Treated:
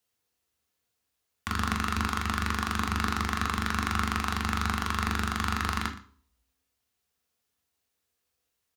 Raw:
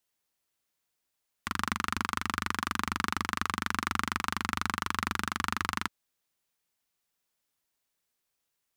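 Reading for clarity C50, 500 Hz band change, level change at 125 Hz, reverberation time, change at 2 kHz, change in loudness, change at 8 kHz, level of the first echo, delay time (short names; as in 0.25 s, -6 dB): 11.5 dB, +4.5 dB, +9.5 dB, 0.50 s, +1.0 dB, +2.5 dB, +1.0 dB, -18.0 dB, 0.119 s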